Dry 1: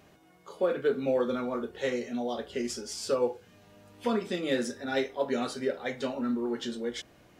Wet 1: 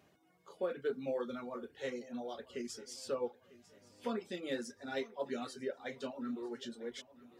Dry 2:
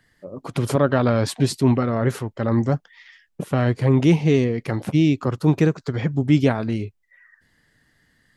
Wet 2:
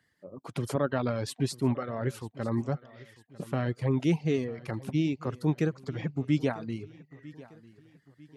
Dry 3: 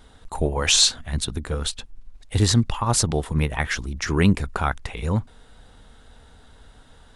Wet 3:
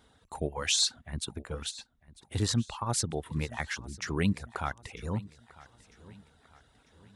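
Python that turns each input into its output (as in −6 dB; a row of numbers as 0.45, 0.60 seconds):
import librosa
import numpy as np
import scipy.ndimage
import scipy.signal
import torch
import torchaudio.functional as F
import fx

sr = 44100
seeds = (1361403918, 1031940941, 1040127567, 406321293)

y = scipy.signal.sosfilt(scipy.signal.butter(2, 75.0, 'highpass', fs=sr, output='sos'), x)
y = fx.dereverb_blind(y, sr, rt60_s=0.71)
y = fx.echo_feedback(y, sr, ms=948, feedback_pct=45, wet_db=-20)
y = y * 10.0 ** (-9.0 / 20.0)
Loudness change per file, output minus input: −10.0, −10.0, −10.0 LU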